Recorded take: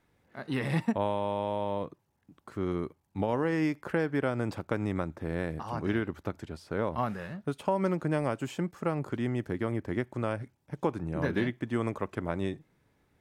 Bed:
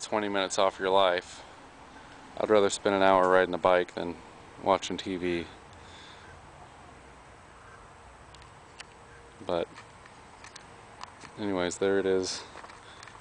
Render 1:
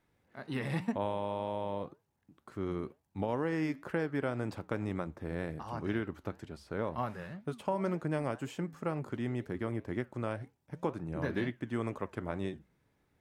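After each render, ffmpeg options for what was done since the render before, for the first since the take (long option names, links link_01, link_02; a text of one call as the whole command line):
ffmpeg -i in.wav -af "flanger=delay=5.1:depth=4.7:regen=-85:speed=2:shape=triangular" out.wav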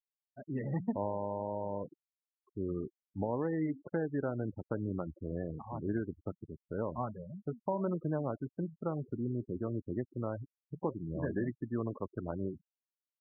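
ffmpeg -i in.wav -af "lowpass=frequency=1200:poles=1,afftfilt=real='re*gte(hypot(re,im),0.0178)':imag='im*gte(hypot(re,im),0.0178)':win_size=1024:overlap=0.75" out.wav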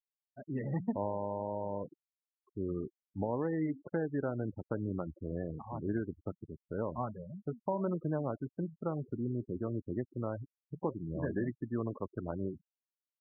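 ffmpeg -i in.wav -af anull out.wav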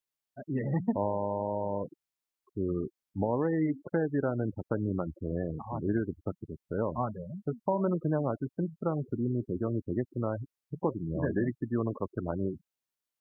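ffmpeg -i in.wav -af "volume=5dB" out.wav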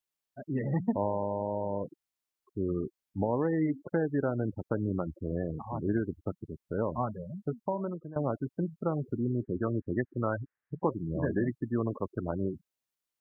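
ffmpeg -i in.wav -filter_complex "[0:a]asettb=1/sr,asplit=3[link_01][link_02][link_03];[link_01]atrim=end=1.234[link_04];[link_02]atrim=start=1.23:end=1.84,asetpts=PTS-STARTPTS,afade=type=in:duration=0.004:curve=qsin,afade=type=out:start_time=0.606:duration=0.004:curve=qsin,lowpass=1100[link_05];[link_03]atrim=start=1.836[link_06];[link_04][link_05]acrossfade=duration=0.004:curve1=hsin:curve2=qsin[link_07];[link_07][link_06]acrossfade=duration=0.004:curve1=qsin:curve2=hsin,asettb=1/sr,asplit=3[link_08][link_09][link_10];[link_08]atrim=end=9.434[link_11];[link_09]atrim=start=9.43:end=10.92,asetpts=PTS-STARTPTS,afade=type=in:duration=0.004:curve=qsin,afade=type=out:start_time=1.486:duration=0.004:curve=qsin,lowpass=frequency=1700:width_type=q:width=4.9[link_12];[link_10]atrim=start=10.916[link_13];[link_11][link_12]acrossfade=duration=0.004:curve1=hsin:curve2=qsin[link_14];[link_14][link_13]acrossfade=duration=0.004:curve1=qsin:curve2=hsin,asplit=2[link_15][link_16];[link_15]atrim=end=8.16,asetpts=PTS-STARTPTS,afade=type=out:start_time=7.47:duration=0.69:silence=0.112202[link_17];[link_16]atrim=start=8.16,asetpts=PTS-STARTPTS,afade=type=in:duration=0.004:curve=hsin:silence=0.112202[link_18];[link_17][link_18]concat=n=2:v=0:a=1" out.wav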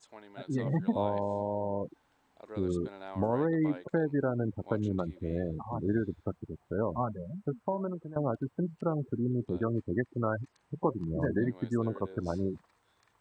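ffmpeg -i in.wav -i bed.wav -filter_complex "[1:a]volume=-22dB[link_01];[0:a][link_01]amix=inputs=2:normalize=0" out.wav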